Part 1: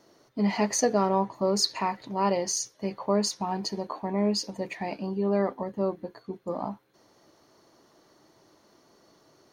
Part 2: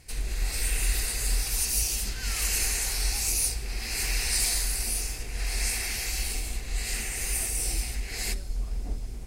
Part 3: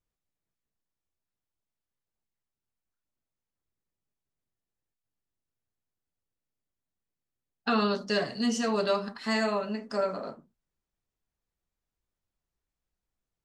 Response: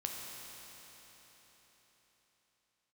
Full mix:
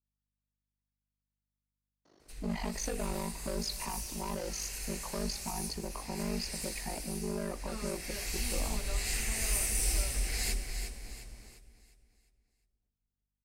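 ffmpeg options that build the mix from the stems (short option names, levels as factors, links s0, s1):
-filter_complex "[0:a]asoftclip=type=tanh:threshold=0.0596,aeval=exprs='val(0)*sin(2*PI*25*n/s)':c=same,lowpass=6600,adelay=2050,volume=0.631,asplit=2[s0][s1];[s1]volume=0.133[s2];[1:a]adelay=2200,volume=0.596,afade=t=in:st=7.95:d=0.67:silence=0.251189,afade=t=out:st=10.48:d=0.4:silence=0.237137,asplit=3[s3][s4][s5];[s4]volume=0.299[s6];[s5]volume=0.473[s7];[2:a]aeval=exprs='val(0)+0.000355*(sin(2*PI*50*n/s)+sin(2*PI*2*50*n/s)/2+sin(2*PI*3*50*n/s)/3+sin(2*PI*4*50*n/s)/4+sin(2*PI*5*50*n/s)/5)':c=same,volume=0.106[s8];[3:a]atrim=start_sample=2205[s9];[s2][s6]amix=inputs=2:normalize=0[s10];[s10][s9]afir=irnorm=-1:irlink=0[s11];[s7]aecho=0:1:353|706|1059|1412|1765|2118:1|0.4|0.16|0.064|0.0256|0.0102[s12];[s0][s3][s8][s11][s12]amix=inputs=5:normalize=0,acrossover=split=390|3000[s13][s14][s15];[s14]acompressor=threshold=0.0126:ratio=6[s16];[s13][s16][s15]amix=inputs=3:normalize=0"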